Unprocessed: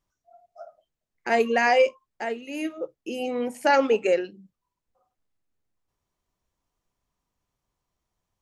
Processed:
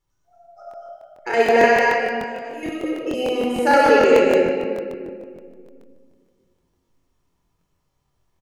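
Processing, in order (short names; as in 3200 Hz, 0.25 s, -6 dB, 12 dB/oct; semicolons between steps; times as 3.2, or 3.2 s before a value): 1.66–2.63 resonator 320 Hz, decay 0.17 s, harmonics all, mix 90%; loudspeakers at several distances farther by 32 m -3 dB, 62 m -9 dB, 80 m -3 dB; shoebox room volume 3800 m³, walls mixed, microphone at 4.2 m; crackling interface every 0.15 s, samples 1024, repeat, from 0.69; gain -1 dB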